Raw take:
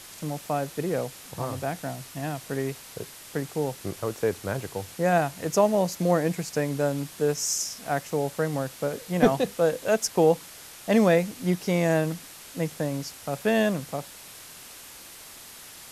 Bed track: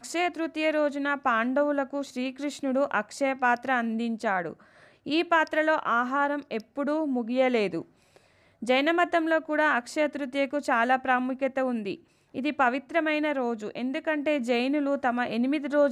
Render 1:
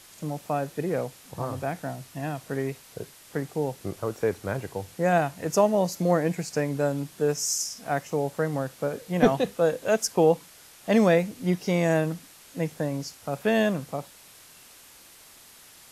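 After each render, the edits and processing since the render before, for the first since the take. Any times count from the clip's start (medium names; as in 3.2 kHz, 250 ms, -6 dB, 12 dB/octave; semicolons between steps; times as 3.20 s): noise print and reduce 6 dB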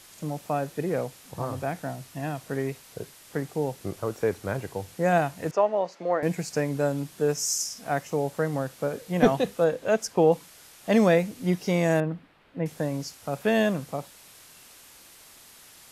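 5.51–6.23 s: band-pass 470–2500 Hz; 9.64–10.32 s: treble shelf 5.4 kHz -9.5 dB; 12.00–12.66 s: distance through air 470 m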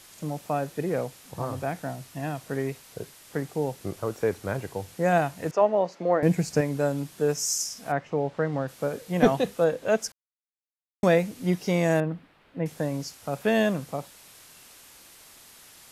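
5.61–6.61 s: bass shelf 370 Hz +8 dB; 7.91–8.67 s: low-pass 2.4 kHz -> 4.2 kHz; 10.12–11.03 s: mute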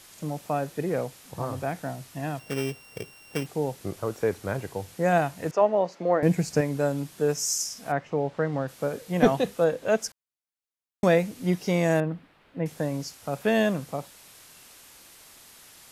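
2.39–3.46 s: sorted samples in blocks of 16 samples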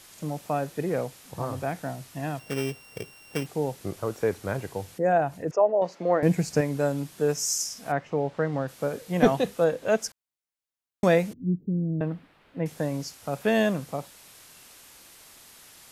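4.97–5.82 s: resonances exaggerated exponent 1.5; 11.33–12.01 s: inverse Chebyshev band-stop 1.5–9 kHz, stop band 80 dB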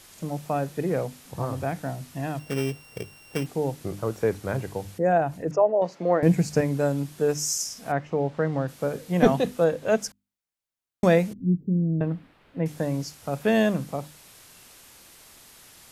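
bass shelf 260 Hz +5.5 dB; hum notches 50/100/150/200/250/300 Hz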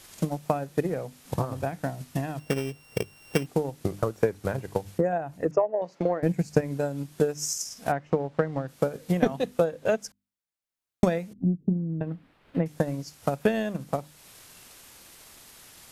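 compression 2:1, threshold -32 dBFS, peak gain reduction 11 dB; transient shaper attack +10 dB, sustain -4 dB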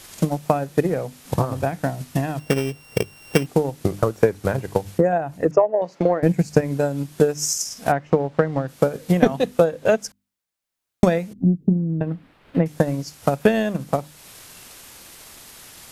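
trim +7 dB; peak limiter -1 dBFS, peak gain reduction 1.5 dB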